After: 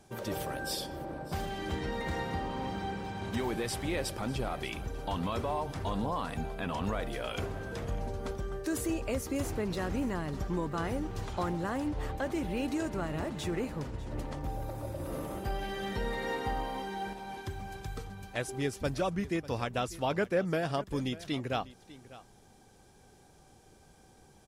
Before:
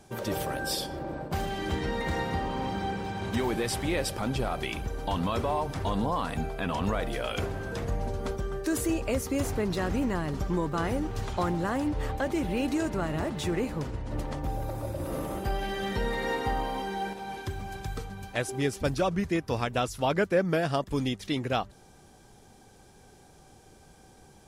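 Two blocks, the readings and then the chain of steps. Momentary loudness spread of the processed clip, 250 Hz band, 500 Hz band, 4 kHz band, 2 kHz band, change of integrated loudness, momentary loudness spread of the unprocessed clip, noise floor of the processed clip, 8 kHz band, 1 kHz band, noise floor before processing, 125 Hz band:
6 LU, -4.5 dB, -4.5 dB, -4.5 dB, -4.5 dB, -4.5 dB, 6 LU, -59 dBFS, -4.5 dB, -4.5 dB, -55 dBFS, -4.5 dB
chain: echo 0.597 s -18 dB; gain -4.5 dB

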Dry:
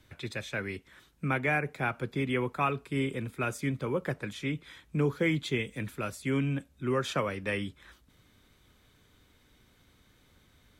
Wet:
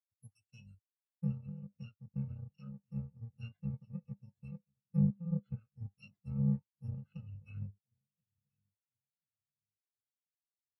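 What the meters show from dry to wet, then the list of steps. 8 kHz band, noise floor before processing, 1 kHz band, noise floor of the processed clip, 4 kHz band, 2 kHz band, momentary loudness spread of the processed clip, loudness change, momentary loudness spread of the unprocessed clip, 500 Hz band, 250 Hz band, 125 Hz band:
under -25 dB, -65 dBFS, under -30 dB, under -85 dBFS, under -25 dB, under -30 dB, 18 LU, -8.0 dB, 9 LU, -25.5 dB, -6.5 dB, -3.0 dB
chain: FFT order left unsorted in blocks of 128 samples; spectral noise reduction 9 dB; bell 6000 Hz -3.5 dB 1.7 oct; treble ducked by the level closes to 1200 Hz, closed at -25 dBFS; in parallel at -5 dB: hard clip -36.5 dBFS, distortion -11 dB; on the sum: resonator 100 Hz, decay 0.43 s, harmonics all, mix 50%; companded quantiser 4-bit; on a send: feedback echo 1.033 s, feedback 49%, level -17.5 dB; on the sum: spectral expander 2.5:1; gain +9.5 dB

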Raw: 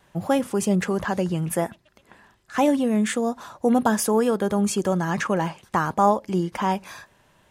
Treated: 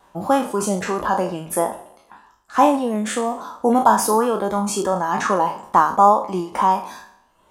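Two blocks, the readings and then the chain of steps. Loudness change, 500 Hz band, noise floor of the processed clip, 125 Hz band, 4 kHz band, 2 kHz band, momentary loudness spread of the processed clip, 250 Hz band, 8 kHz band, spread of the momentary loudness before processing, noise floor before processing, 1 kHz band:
+4.0 dB, +3.0 dB, -58 dBFS, -4.5 dB, +2.0 dB, +1.5 dB, 9 LU, -1.0 dB, +3.5 dB, 6 LU, -61 dBFS, +8.5 dB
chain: spectral trails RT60 0.92 s; ten-band EQ 125 Hz -11 dB, 250 Hz +3 dB, 1000 Hz +10 dB, 2000 Hz -6 dB; reverb removal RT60 0.67 s

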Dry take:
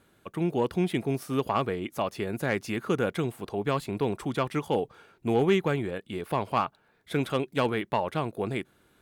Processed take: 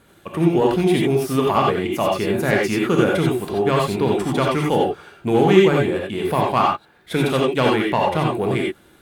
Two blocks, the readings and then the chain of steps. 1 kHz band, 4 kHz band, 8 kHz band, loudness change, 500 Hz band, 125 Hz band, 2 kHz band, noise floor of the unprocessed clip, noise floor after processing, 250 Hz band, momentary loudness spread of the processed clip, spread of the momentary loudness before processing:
+10.0 dB, +11.0 dB, +11.5 dB, +10.0 dB, +10.5 dB, +9.5 dB, +10.0 dB, -66 dBFS, -53 dBFS, +10.5 dB, 6 LU, 7 LU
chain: in parallel at -11 dB: overloaded stage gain 32.5 dB; on the sum: non-linear reverb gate 0.11 s rising, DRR -1.5 dB; gain +5.5 dB

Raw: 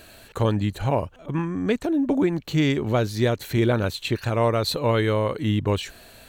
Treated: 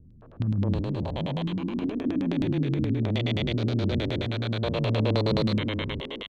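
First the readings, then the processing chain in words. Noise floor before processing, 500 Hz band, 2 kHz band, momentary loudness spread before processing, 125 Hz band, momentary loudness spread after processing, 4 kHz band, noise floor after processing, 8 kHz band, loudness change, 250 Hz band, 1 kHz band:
-49 dBFS, -7.0 dB, -5.5 dB, 6 LU, -1.5 dB, 5 LU, -2.0 dB, -49 dBFS, under -15 dB, -3.5 dB, -3.0 dB, -9.0 dB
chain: stepped spectrum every 0.4 s; three bands offset in time lows, mids, highs 0.22/0.72 s, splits 250/1200 Hz; LFO low-pass square 9.5 Hz 240–3600 Hz

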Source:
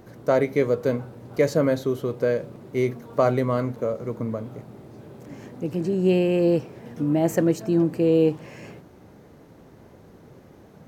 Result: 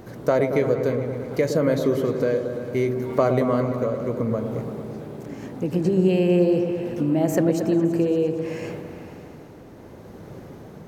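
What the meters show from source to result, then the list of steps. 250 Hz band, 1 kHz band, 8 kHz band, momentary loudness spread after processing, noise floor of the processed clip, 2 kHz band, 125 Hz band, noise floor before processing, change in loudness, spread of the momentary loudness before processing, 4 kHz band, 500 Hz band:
+1.5 dB, +1.0 dB, +1.0 dB, 17 LU, -43 dBFS, +0.5 dB, +2.0 dB, -50 dBFS, +1.0 dB, 17 LU, +0.5 dB, +1.0 dB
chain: compressor 2.5:1, threshold -27 dBFS, peak gain reduction 8.5 dB; tremolo triangle 0.7 Hz, depth 40%; repeats that get brighter 0.113 s, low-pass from 750 Hz, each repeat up 1 oct, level -6 dB; gain +7.5 dB

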